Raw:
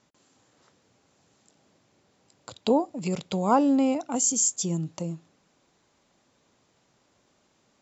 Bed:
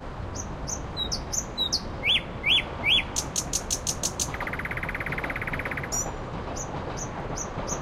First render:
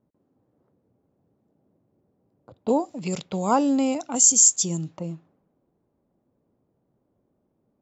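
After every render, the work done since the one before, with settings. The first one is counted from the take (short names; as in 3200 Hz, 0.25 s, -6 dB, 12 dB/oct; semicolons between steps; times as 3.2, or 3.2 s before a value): low-pass opened by the level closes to 460 Hz, open at -22.5 dBFS; high shelf 4500 Hz +11.5 dB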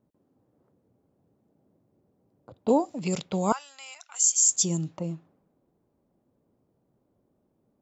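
3.52–4.49 ladder high-pass 1200 Hz, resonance 25%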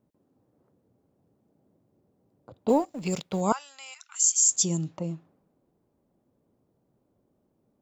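2.69–3.41 G.711 law mismatch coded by A; 3.94–4.51 Chebyshev high-pass 1200 Hz, order 3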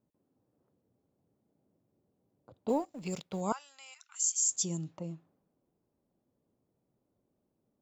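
gain -8 dB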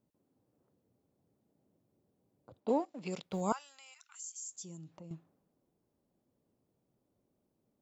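2.6–3.23 BPF 200–5200 Hz; 3.76–5.11 compressor 2:1, threshold -55 dBFS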